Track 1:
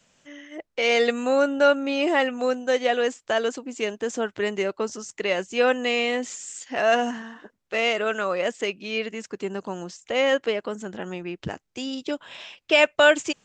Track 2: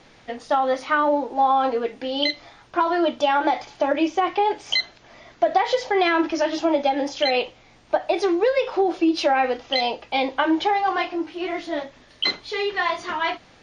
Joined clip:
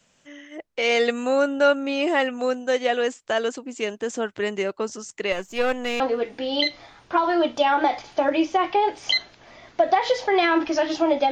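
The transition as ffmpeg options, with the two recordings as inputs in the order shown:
ffmpeg -i cue0.wav -i cue1.wav -filter_complex "[0:a]asettb=1/sr,asplit=3[link_01][link_02][link_03];[link_01]atrim=end=5.324[link_04];[link_02]atrim=start=5.32:end=6,asetpts=PTS-STARTPTS,afade=type=in:duration=0.004:curve=qsin,afade=type=out:start_time=0.676:duration=0.004:curve=qsin,aeval=exprs='if(lt(val(0),0),0.447*val(0),val(0))':channel_layout=same[link_05];[link_03]atrim=start=5.996[link_06];[link_04][link_05]acrossfade=duration=0.004:curve1=hsin:curve2=qsin[link_07];[link_07][link_06]acrossfade=duration=0.004:curve1=qsin:curve2=hsin,apad=whole_dur=11.31,atrim=end=11.31,atrim=end=6.002[link_08];[1:a]atrim=start=1.628:end=6.94[link_09];[link_08][link_09]acrossfade=duration=0.004:curve1=hsin:curve2=hsin" out.wav

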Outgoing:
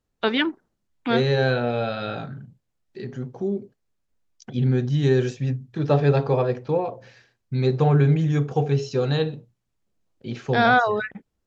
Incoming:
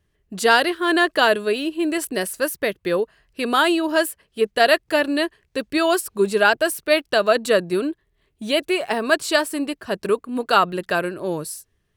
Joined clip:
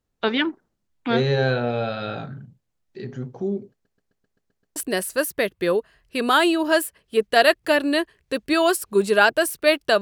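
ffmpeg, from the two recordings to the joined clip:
ffmpeg -i cue0.wav -i cue1.wav -filter_complex "[0:a]apad=whole_dur=10.01,atrim=end=10.01,asplit=8[link_01][link_02][link_03][link_04][link_05][link_06][link_07][link_08];[link_01]atrim=end=3.852[link_09];[link_02]atrim=start=3.718:end=3.852[link_10];[link_03]atrim=start=3.718:end=3.852[link_11];[link_04]atrim=start=3.718:end=3.852[link_12];[link_05]atrim=start=3.718:end=3.852[link_13];[link_06]atrim=start=3.718:end=3.852[link_14];[link_07]atrim=start=3.718:end=3.852[link_15];[link_08]atrim=start=3.718:end=3.852[link_16];[1:a]atrim=start=1.998:end=7.25[link_17];[link_09][link_10]acrossfade=duration=0.004:curve1=hsin:curve2=hsin[link_18];[link_18][link_11]acrossfade=duration=0.004:curve1=hsin:curve2=hsin[link_19];[link_19][link_12]acrossfade=duration=0.004:curve1=hsin:curve2=hsin[link_20];[link_20][link_13]acrossfade=duration=0.004:curve1=hsin:curve2=hsin[link_21];[link_21][link_14]acrossfade=duration=0.004:curve1=hsin:curve2=hsin[link_22];[link_22][link_15]acrossfade=duration=0.004:curve1=hsin:curve2=hsin[link_23];[link_23][link_16]acrossfade=duration=0.004:curve1=hsin:curve2=hsin[link_24];[link_24][link_17]acrossfade=duration=0.004:curve1=hsin:curve2=hsin" out.wav

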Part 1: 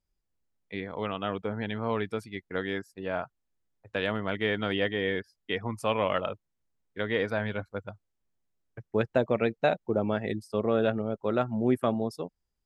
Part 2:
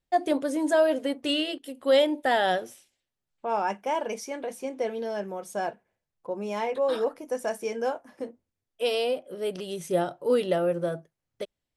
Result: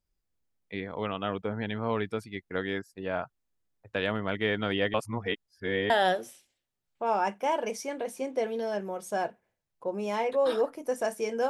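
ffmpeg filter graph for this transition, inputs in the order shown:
ffmpeg -i cue0.wav -i cue1.wav -filter_complex "[0:a]apad=whole_dur=11.49,atrim=end=11.49,asplit=2[link_01][link_02];[link_01]atrim=end=4.942[link_03];[link_02]atrim=start=4.938:end=5.902,asetpts=PTS-STARTPTS,areverse[link_04];[1:a]atrim=start=2.328:end=7.92[link_05];[link_03][link_04]acrossfade=duration=0.004:curve1=hsin:curve2=hsin[link_06];[link_06][link_05]acrossfade=duration=0.004:curve1=hsin:curve2=hsin" out.wav

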